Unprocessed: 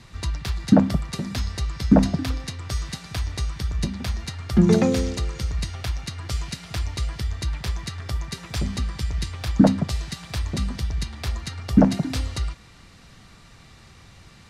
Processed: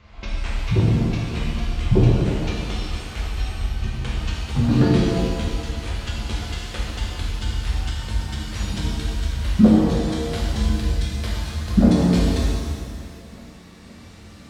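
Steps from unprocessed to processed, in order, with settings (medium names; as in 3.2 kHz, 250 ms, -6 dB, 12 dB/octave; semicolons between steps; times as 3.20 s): pitch bend over the whole clip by -10 st ending unshifted; tape echo 516 ms, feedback 87%, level -21 dB, low-pass 1.2 kHz; pitch-shifted reverb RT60 1.7 s, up +7 st, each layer -8 dB, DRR -5 dB; trim -3.5 dB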